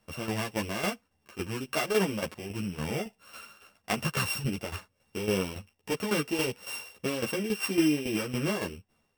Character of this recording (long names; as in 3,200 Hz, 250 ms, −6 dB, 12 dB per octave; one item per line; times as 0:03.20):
a buzz of ramps at a fixed pitch in blocks of 16 samples
tremolo saw down 3.6 Hz, depth 70%
a shimmering, thickened sound